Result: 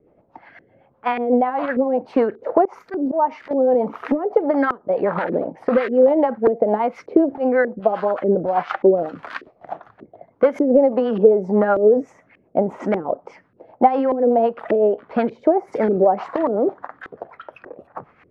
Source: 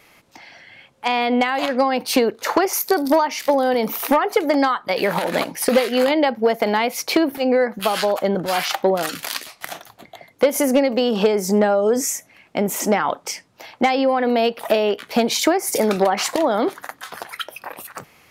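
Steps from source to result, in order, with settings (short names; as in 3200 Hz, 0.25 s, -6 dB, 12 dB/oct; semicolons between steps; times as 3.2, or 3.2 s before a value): LFO low-pass saw up 1.7 Hz 370–1800 Hz; 2.65–3.51 auto swell 0.125 s; rotary speaker horn 8 Hz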